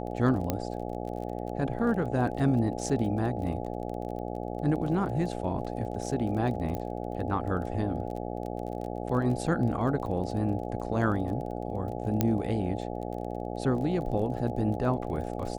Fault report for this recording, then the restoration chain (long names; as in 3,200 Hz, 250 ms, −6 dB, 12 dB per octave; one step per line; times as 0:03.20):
mains buzz 60 Hz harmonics 14 −35 dBFS
surface crackle 25 per second −37 dBFS
0:00.50: click −13 dBFS
0:06.75: click −21 dBFS
0:12.21: click −10 dBFS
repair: click removal
hum removal 60 Hz, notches 14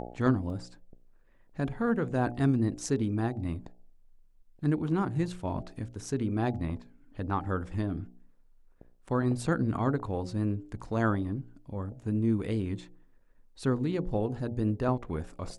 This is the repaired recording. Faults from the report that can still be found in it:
0:00.50: click